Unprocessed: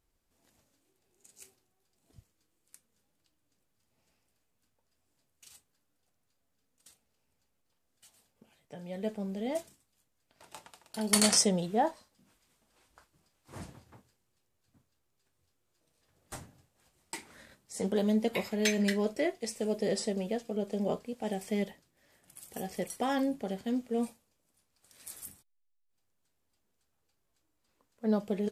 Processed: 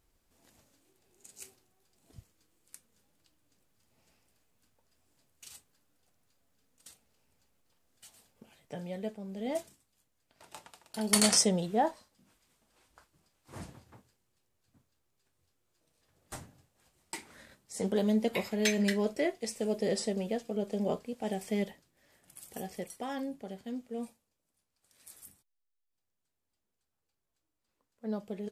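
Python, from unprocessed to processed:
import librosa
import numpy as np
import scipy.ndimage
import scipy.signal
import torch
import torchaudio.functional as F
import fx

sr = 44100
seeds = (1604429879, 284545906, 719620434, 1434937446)

y = fx.gain(x, sr, db=fx.line((8.78, 5.0), (9.21, -7.0), (9.5, 0.0), (22.48, 0.0), (23.0, -7.0)))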